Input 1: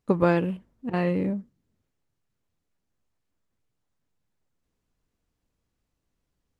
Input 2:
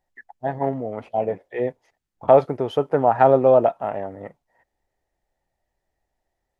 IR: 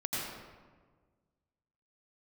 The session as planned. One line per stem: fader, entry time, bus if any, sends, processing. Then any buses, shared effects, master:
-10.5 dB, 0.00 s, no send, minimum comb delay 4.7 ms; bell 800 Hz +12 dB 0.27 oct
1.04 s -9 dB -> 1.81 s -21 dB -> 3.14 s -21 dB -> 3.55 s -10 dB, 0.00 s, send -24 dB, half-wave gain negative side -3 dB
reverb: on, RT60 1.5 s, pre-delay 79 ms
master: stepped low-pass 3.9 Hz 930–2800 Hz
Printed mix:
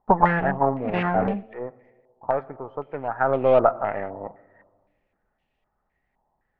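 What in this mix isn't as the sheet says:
stem 1 -10.5 dB -> +1.0 dB; stem 2 -9.0 dB -> -0.5 dB

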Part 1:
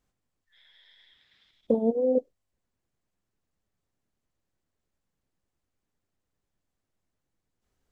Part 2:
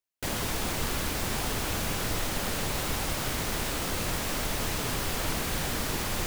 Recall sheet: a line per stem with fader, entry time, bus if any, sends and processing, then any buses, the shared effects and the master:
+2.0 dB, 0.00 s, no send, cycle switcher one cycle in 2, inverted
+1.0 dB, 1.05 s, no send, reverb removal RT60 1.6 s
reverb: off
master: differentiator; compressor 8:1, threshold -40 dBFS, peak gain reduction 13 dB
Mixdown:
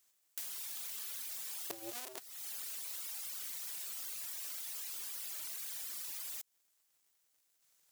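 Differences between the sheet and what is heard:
stem 1 +2.0 dB -> +13.5 dB; stem 2: entry 1.05 s -> 0.15 s

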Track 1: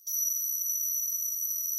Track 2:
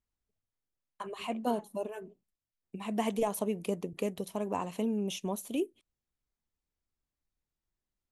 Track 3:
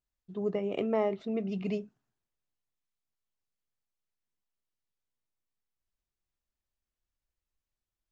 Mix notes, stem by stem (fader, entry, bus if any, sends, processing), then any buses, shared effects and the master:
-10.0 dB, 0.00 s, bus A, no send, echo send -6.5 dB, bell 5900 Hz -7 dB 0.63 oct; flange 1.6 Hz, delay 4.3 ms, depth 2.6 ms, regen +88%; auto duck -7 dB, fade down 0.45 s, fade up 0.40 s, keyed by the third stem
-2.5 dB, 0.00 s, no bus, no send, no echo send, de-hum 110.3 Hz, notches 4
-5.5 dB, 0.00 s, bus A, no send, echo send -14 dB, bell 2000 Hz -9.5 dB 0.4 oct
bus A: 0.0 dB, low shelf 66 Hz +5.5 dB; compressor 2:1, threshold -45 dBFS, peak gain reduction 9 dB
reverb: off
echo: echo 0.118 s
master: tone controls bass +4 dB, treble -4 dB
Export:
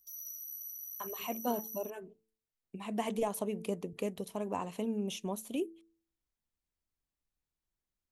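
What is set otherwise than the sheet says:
stem 1: missing flange 1.6 Hz, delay 4.3 ms, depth 2.6 ms, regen +88%; stem 3: muted; master: missing tone controls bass +4 dB, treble -4 dB

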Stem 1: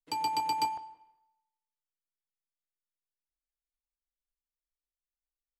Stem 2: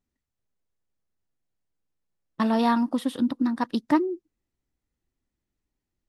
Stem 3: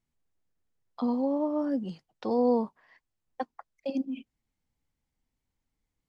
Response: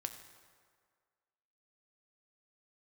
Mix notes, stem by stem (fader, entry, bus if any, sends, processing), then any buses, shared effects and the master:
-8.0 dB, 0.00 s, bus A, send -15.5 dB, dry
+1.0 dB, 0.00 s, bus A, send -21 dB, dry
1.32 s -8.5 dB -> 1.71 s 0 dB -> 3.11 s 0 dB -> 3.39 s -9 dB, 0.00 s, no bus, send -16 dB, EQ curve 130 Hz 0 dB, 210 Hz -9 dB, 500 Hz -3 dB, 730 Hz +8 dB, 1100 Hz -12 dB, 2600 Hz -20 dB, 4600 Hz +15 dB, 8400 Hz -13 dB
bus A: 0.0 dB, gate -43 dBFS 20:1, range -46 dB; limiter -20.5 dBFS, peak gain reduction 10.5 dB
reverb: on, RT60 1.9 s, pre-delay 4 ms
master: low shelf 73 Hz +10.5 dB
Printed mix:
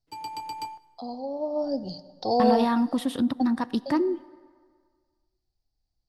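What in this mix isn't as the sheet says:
stem 3: send -16 dB -> -9 dB; reverb return +9.5 dB

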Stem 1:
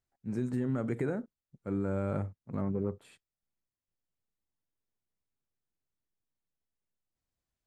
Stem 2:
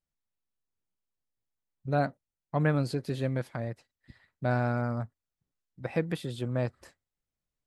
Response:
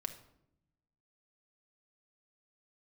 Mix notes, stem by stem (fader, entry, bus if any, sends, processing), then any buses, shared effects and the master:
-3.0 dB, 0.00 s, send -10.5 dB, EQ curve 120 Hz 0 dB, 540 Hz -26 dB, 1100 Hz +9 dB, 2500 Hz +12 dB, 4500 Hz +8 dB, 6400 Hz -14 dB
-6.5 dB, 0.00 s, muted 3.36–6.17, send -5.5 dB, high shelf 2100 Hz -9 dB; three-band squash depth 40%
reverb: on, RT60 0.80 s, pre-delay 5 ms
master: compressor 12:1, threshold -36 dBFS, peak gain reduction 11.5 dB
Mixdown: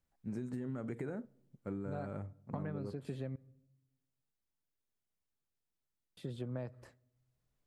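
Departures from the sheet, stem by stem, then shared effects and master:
stem 1: missing EQ curve 120 Hz 0 dB, 540 Hz -26 dB, 1100 Hz +9 dB, 2500 Hz +12 dB, 4500 Hz +8 dB, 6400 Hz -14 dB; reverb return -8.0 dB

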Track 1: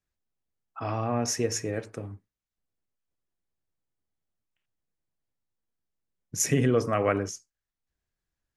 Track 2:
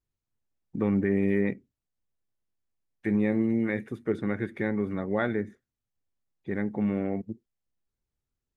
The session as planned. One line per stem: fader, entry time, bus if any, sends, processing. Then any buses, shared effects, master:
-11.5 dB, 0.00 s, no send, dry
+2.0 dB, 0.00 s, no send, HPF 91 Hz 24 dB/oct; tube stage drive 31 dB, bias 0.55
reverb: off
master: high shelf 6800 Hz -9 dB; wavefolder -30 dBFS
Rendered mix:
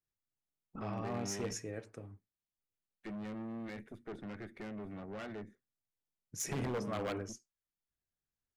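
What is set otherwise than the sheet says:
stem 2 +2.0 dB -> -9.0 dB; master: missing high shelf 6800 Hz -9 dB

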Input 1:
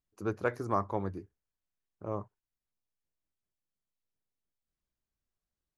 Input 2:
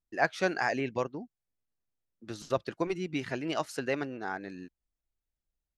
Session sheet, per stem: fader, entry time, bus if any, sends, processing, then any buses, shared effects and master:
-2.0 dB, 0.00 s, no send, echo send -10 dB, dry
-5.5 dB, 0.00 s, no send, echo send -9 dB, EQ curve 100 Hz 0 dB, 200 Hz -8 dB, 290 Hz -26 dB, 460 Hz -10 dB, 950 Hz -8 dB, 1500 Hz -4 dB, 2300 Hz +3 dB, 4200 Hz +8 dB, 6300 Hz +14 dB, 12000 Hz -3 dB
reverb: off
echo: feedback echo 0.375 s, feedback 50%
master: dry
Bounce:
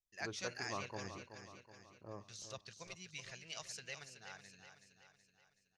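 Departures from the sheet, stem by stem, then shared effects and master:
stem 1 -2.0 dB -> -14.0 dB; stem 2 -5.5 dB -> -13.0 dB

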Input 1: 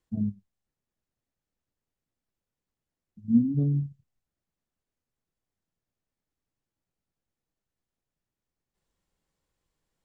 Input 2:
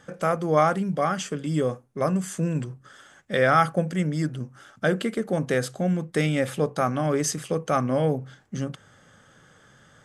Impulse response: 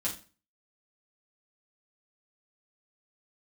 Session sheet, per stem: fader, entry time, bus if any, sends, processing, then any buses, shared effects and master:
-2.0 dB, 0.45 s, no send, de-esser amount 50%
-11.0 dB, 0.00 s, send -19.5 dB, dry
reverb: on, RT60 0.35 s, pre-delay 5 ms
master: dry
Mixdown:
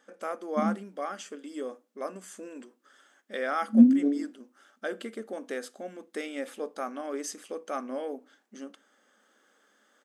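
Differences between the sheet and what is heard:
stem 1 -2.0 dB -> +6.0 dB; master: extra brick-wall FIR high-pass 210 Hz

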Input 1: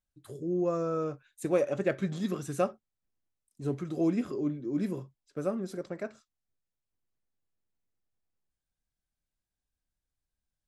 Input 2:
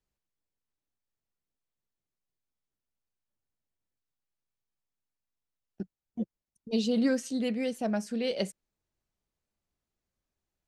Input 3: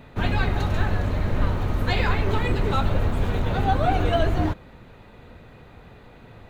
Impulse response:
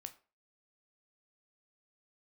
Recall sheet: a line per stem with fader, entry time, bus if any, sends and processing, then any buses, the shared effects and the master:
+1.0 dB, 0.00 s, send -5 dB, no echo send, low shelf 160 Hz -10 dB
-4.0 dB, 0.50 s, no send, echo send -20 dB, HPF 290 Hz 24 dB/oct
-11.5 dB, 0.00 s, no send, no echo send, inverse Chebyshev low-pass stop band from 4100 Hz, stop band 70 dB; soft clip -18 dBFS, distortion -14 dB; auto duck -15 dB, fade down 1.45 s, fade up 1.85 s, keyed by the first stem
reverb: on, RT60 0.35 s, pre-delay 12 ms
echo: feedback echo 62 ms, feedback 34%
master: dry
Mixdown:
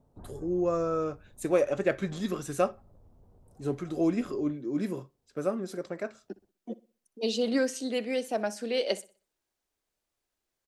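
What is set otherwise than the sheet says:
stem 2 -4.0 dB -> +3.0 dB; stem 3 -11.5 dB -> -18.5 dB

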